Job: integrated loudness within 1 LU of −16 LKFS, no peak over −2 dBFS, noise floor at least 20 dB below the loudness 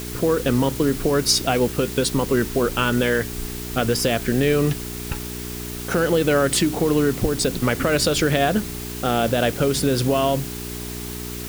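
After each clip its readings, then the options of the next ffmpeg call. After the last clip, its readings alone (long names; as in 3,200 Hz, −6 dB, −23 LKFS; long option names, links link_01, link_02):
mains hum 60 Hz; hum harmonics up to 420 Hz; level of the hum −30 dBFS; background noise floor −32 dBFS; target noise floor −41 dBFS; integrated loudness −21.0 LKFS; sample peak −5.5 dBFS; target loudness −16.0 LKFS
→ -af "bandreject=frequency=60:width_type=h:width=4,bandreject=frequency=120:width_type=h:width=4,bandreject=frequency=180:width_type=h:width=4,bandreject=frequency=240:width_type=h:width=4,bandreject=frequency=300:width_type=h:width=4,bandreject=frequency=360:width_type=h:width=4,bandreject=frequency=420:width_type=h:width=4"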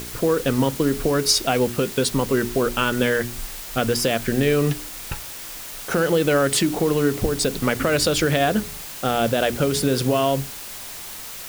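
mains hum none found; background noise floor −35 dBFS; target noise floor −41 dBFS
→ -af "afftdn=noise_reduction=6:noise_floor=-35"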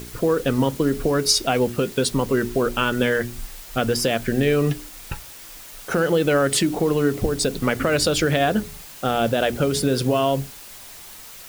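background noise floor −41 dBFS; target noise floor −42 dBFS
→ -af "afftdn=noise_reduction=6:noise_floor=-41"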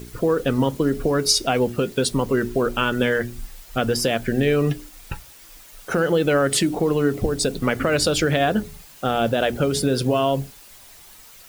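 background noise floor −46 dBFS; integrated loudness −21.5 LKFS; sample peak −6.5 dBFS; target loudness −16.0 LKFS
→ -af "volume=5.5dB,alimiter=limit=-2dB:level=0:latency=1"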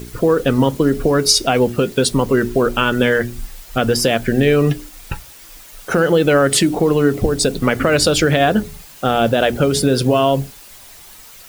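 integrated loudness −16.0 LKFS; sample peak −2.0 dBFS; background noise floor −41 dBFS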